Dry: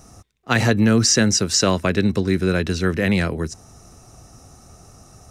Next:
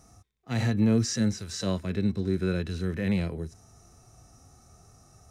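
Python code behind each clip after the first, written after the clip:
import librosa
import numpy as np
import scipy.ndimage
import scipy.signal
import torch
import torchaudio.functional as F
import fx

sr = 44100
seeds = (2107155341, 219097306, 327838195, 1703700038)

y = fx.notch(x, sr, hz=2800.0, q=18.0)
y = fx.hpss(y, sr, part='percussive', gain_db=-17)
y = F.gain(torch.from_numpy(y), -6.0).numpy()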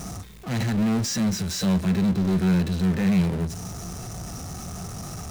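y = fx.power_curve(x, sr, exponent=0.35)
y = fx.peak_eq(y, sr, hz=180.0, db=10.5, octaves=0.44)
y = F.gain(torch.from_numpy(y), -7.5).numpy()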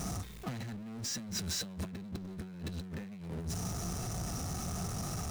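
y = fx.over_compress(x, sr, threshold_db=-31.0, ratio=-1.0)
y = F.gain(torch.from_numpy(y), -8.5).numpy()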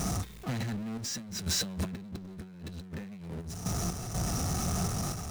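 y = fx.tremolo_random(x, sr, seeds[0], hz=4.1, depth_pct=70)
y = F.gain(torch.from_numpy(y), 7.5).numpy()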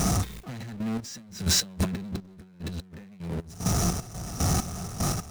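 y = fx.step_gate(x, sr, bpm=75, pattern='xx..x..x.', floor_db=-12.0, edge_ms=4.5)
y = F.gain(torch.from_numpy(y), 7.5).numpy()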